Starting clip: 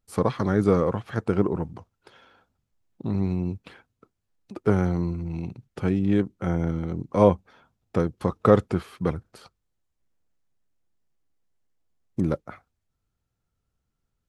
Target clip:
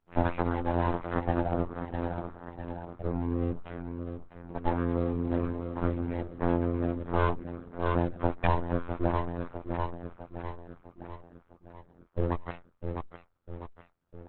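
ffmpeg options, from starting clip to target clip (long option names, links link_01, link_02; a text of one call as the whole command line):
ffmpeg -i in.wav -filter_complex "[0:a]asplit=2[link_01][link_02];[link_02]asoftclip=type=tanh:threshold=-18.5dB,volume=-6dB[link_03];[link_01][link_03]amix=inputs=2:normalize=0,lowpass=1200,asplit=2[link_04][link_05];[link_05]aecho=0:1:652|1304|1956|2608|3260|3912:0.299|0.155|0.0807|0.042|0.0218|0.0114[link_06];[link_04][link_06]amix=inputs=2:normalize=0,acompressor=threshold=-22dB:ratio=4,lowshelf=frequency=430:gain=-6,afftfilt=real='hypot(re,im)*cos(PI*b)':imag='0':win_size=2048:overlap=0.75,aeval=exprs='abs(val(0))':channel_layout=same,volume=8.5dB" -ar 48000 -c:a libopus -b:a 8k out.opus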